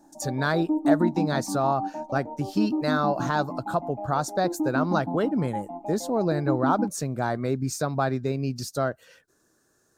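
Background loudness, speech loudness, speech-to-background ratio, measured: −30.5 LKFS, −27.5 LKFS, 3.0 dB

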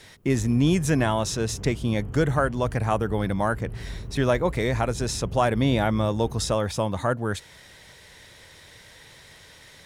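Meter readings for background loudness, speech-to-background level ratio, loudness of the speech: −38.0 LKFS, 13.0 dB, −25.0 LKFS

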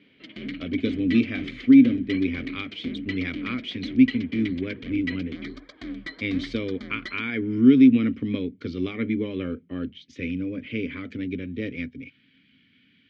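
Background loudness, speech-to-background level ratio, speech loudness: −36.5 LKFS, 12.0 dB, −24.5 LKFS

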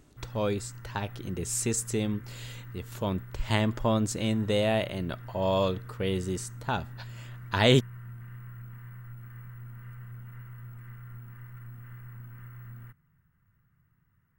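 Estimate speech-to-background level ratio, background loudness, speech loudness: 16.0 dB, −45.0 LKFS, −29.0 LKFS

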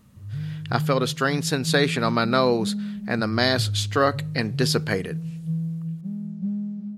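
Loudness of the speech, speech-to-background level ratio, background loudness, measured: −23.5 LKFS, 7.0 dB, −30.5 LKFS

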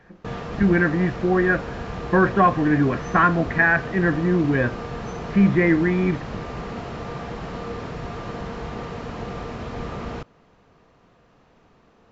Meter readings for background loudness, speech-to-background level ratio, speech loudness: −32.5 LKFS, 12.5 dB, −20.0 LKFS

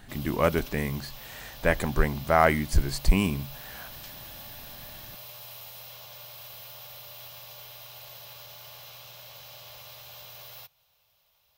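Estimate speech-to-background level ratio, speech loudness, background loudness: 16.0 dB, −26.5 LKFS, −42.5 LKFS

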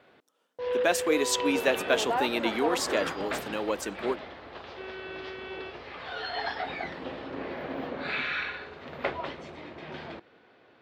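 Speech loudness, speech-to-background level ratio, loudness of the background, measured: −29.0 LKFS, 5.0 dB, −34.0 LKFS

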